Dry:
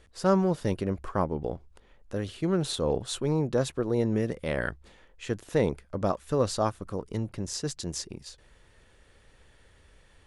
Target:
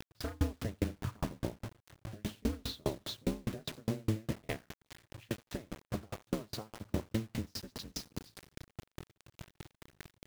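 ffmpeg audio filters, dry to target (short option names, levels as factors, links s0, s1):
-filter_complex "[0:a]tiltshelf=f=1100:g=-3.5,aeval=exprs='val(0)*sin(2*PI*110*n/s)':c=same,highpass=81,bass=f=250:g=14,treble=f=4000:g=-1,asettb=1/sr,asplit=3[s0][s1][s2];[s0]atrim=end=4.564[s3];[s1]atrim=start=4.56:end=6.79,asetpts=PTS-STARTPTS,afade=t=in:d=0.004:c=qsin,afade=t=out:st=2.226:d=0.004:c=qsin,acompressor=threshold=0.0126:ratio=5[s4];[s2]atrim=start=6.786[s5];[s3][s4]acrossfade=d=0.004:c1=hsin:c2=qsin[s6];[s6][s5]acrossfade=d=0.004:c1=qsin:c2=hsin,aeval=exprs='0.15*(abs(mod(val(0)/0.15+3,4)-2)-1)':c=same,alimiter=level_in=1.58:limit=0.0631:level=0:latency=1:release=403,volume=0.631,lowpass=f=5100:w=0.5412,lowpass=f=5100:w=1.3066,aecho=1:1:89|178|267|356|445|534:0.2|0.114|0.0648|0.037|0.0211|0.012,acrusher=bits=7:mix=0:aa=0.000001,aeval=exprs='val(0)*pow(10,-39*if(lt(mod(4.9*n/s,1),2*abs(4.9)/1000),1-mod(4.9*n/s,1)/(2*abs(4.9)/1000),(mod(4.9*n/s,1)-2*abs(4.9)/1000)/(1-2*abs(4.9)/1000))/20)':c=same,volume=3.16"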